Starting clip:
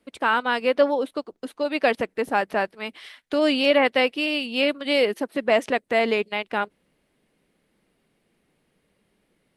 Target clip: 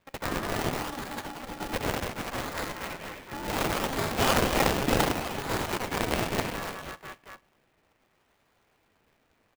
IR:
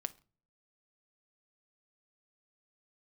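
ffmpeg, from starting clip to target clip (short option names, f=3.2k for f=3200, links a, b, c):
-filter_complex "[0:a]asettb=1/sr,asplit=3[a][b][c];[a]atrim=end=2.704[d];[b]atrim=start=2.7:end=4.07,asetpts=PTS-STARTPTS,afade=t=in:d=0.004:c=qsin,afade=t=out:st=1.366:d=0.004:c=qsin,highshelf=f=2.9k:g=-10.5[e];[c]atrim=start=4.066[f];[d][e]acrossfade=d=0.004:c1=hsin:c2=qsin[g];[g][f]acrossfade=d=0.004:c1=qsin:c2=hsin,aecho=1:1:80|184|319.2|495|723.4:0.631|0.398|0.251|0.158|0.1,asplit=2[h][i];[1:a]atrim=start_sample=2205,lowpass=5.9k[j];[i][j]afir=irnorm=-1:irlink=0,volume=7.5dB[k];[h][k]amix=inputs=2:normalize=0,acontrast=36,aderivative,acrossover=split=2300[l][m];[l]acompressor=threshold=-37dB:ratio=6[n];[m]acrusher=samples=30:mix=1:aa=0.000001:lfo=1:lforange=30:lforate=0.68[o];[n][o]amix=inputs=2:normalize=0,aeval=exprs='val(0)*sgn(sin(2*PI*270*n/s))':c=same"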